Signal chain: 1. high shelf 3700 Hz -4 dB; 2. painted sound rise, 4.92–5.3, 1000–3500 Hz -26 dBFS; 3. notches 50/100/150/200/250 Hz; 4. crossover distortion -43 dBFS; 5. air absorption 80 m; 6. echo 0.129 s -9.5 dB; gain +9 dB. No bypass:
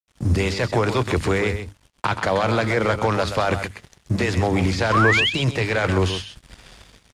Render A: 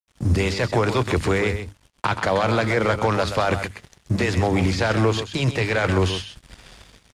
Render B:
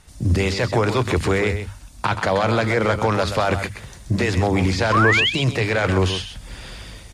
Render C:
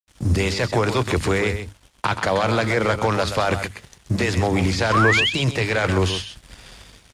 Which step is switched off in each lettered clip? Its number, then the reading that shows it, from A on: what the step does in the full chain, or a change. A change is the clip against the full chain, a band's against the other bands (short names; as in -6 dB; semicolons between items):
2, 4 kHz band -3.0 dB; 4, distortion -18 dB; 1, 8 kHz band +3.0 dB